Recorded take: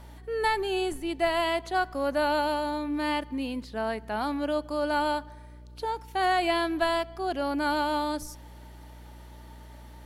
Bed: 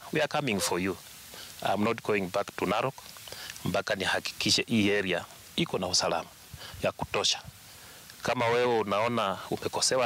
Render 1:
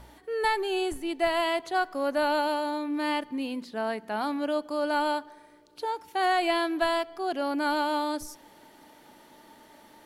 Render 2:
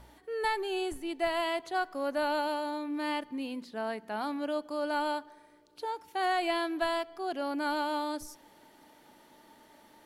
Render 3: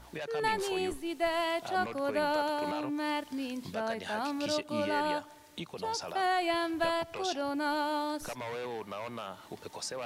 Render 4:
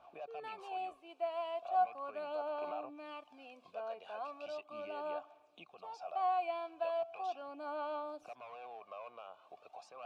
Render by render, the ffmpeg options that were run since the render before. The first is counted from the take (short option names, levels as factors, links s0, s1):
-af "bandreject=f=60:t=h:w=4,bandreject=f=120:t=h:w=4,bandreject=f=180:t=h:w=4,bandreject=f=240:t=h:w=4"
-af "volume=0.596"
-filter_complex "[1:a]volume=0.237[s0];[0:a][s0]amix=inputs=2:normalize=0"
-filter_complex "[0:a]asplit=3[s0][s1][s2];[s0]bandpass=f=730:t=q:w=8,volume=1[s3];[s1]bandpass=f=1090:t=q:w=8,volume=0.501[s4];[s2]bandpass=f=2440:t=q:w=8,volume=0.355[s5];[s3][s4][s5]amix=inputs=3:normalize=0,aphaser=in_gain=1:out_gain=1:delay=2.1:decay=0.43:speed=0.38:type=sinusoidal"